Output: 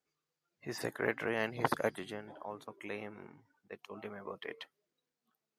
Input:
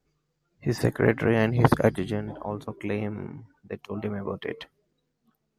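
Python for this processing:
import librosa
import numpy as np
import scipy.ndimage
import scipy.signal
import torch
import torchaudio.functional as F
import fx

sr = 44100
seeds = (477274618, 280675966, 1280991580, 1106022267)

y = fx.highpass(x, sr, hz=790.0, slope=6)
y = F.gain(torch.from_numpy(y), -6.0).numpy()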